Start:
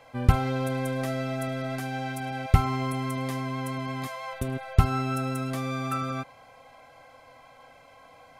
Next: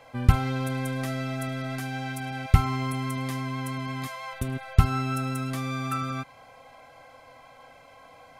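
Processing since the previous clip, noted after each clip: dynamic EQ 540 Hz, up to -7 dB, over -45 dBFS, Q 1.1; gain +1.5 dB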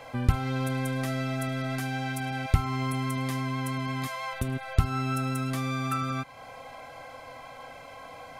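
compressor 1.5:1, threshold -44 dBFS, peak gain reduction 12.5 dB; gain +6.5 dB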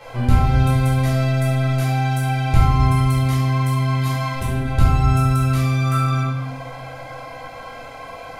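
dynamic EQ 1600 Hz, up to -4 dB, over -45 dBFS, Q 1.5; reverb RT60 1.1 s, pre-delay 9 ms, DRR -7.5 dB; gain -1.5 dB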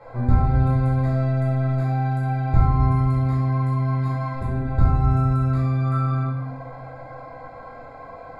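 running mean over 15 samples; gain -2.5 dB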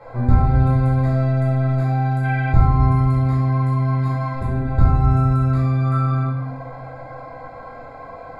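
spectral gain 2.25–2.52, 1500–3400 Hz +11 dB; gain +3 dB

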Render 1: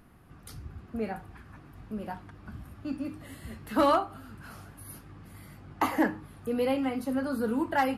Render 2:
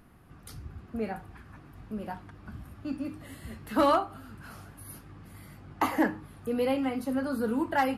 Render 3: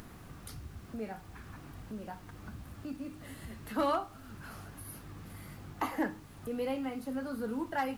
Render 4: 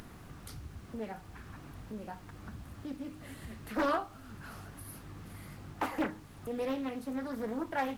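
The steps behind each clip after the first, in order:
nothing audible
upward compressor, threshold -31 dBFS; added noise pink -53 dBFS; gain -7 dB
Doppler distortion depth 0.54 ms

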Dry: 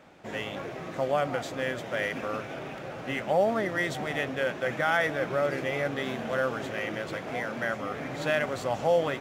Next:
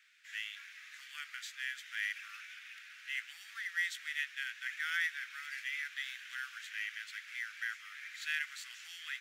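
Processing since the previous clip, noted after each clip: steep high-pass 1600 Hz 48 dB/oct; gain -3.5 dB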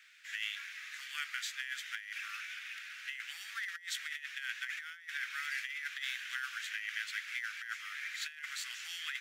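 negative-ratio compressor -42 dBFS, ratio -0.5; gain +3 dB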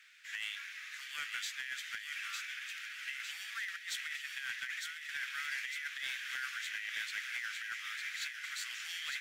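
in parallel at -8.5 dB: sine folder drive 7 dB, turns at -22.5 dBFS; on the sum: thin delay 0.905 s, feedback 57%, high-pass 2000 Hz, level -4 dB; gain -7.5 dB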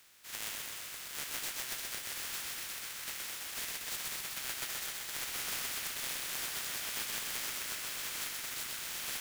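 spectral contrast lowered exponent 0.18; lo-fi delay 0.127 s, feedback 80%, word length 9-bit, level -3 dB

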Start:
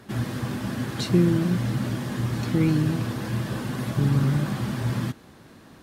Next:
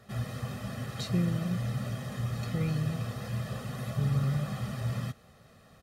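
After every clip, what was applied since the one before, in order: comb 1.6 ms, depth 80%; gain -9 dB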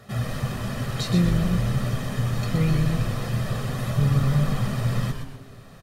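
on a send: frequency-shifting echo 0.123 s, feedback 35%, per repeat -130 Hz, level -6 dB; on the sum: shoebox room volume 1700 m³, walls mixed, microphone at 0.35 m; gain +7.5 dB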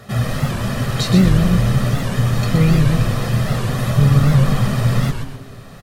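record warp 78 rpm, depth 160 cents; gain +8 dB

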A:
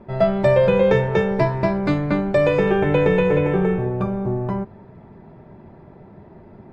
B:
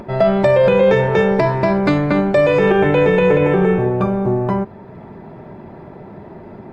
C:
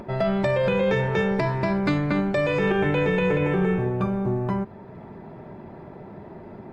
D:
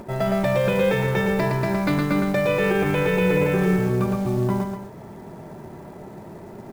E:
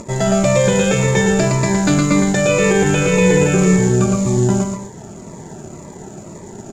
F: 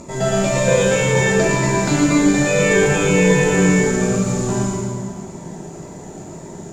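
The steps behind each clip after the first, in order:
limiter -12 dBFS, peak gain reduction 6.5 dB; low shelf 130 Hz -8.5 dB; upward compressor, threshold -38 dBFS; gain +8 dB
dynamic EQ 580 Hz, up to -6 dB, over -25 dBFS, Q 0.78; gain -5 dB
companded quantiser 6-bit; on a send: loudspeakers at several distances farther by 39 m -4 dB, 85 m -11 dB
synth low-pass 7000 Hz, resonance Q 16; in parallel at -5 dB: crossover distortion -41 dBFS; on the sum: cascading phaser falling 1.9 Hz; gain +4 dB
plate-style reverb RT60 1.8 s, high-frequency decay 0.9×, DRR -5.5 dB; gain -6.5 dB

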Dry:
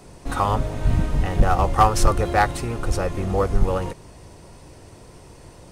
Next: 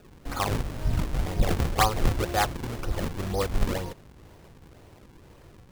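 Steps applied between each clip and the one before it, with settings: decimation with a swept rate 40×, swing 160% 2 Hz; gain -6.5 dB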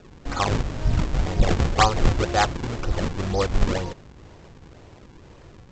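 steep low-pass 7700 Hz 96 dB/oct; gain +4.5 dB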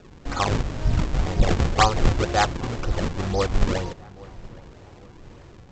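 darkening echo 0.823 s, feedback 45%, low-pass 2200 Hz, level -21 dB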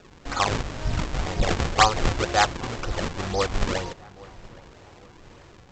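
low shelf 480 Hz -8 dB; gain +2.5 dB

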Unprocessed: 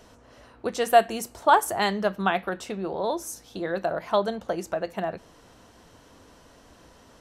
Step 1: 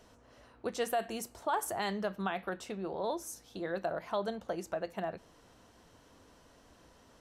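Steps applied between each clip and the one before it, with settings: limiter -15.5 dBFS, peak gain reduction 10 dB; gain -7.5 dB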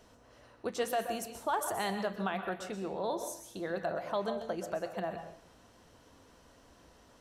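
plate-style reverb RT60 0.53 s, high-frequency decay 0.95×, pre-delay 0.11 s, DRR 7.5 dB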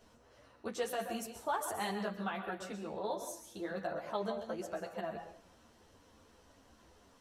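ensemble effect

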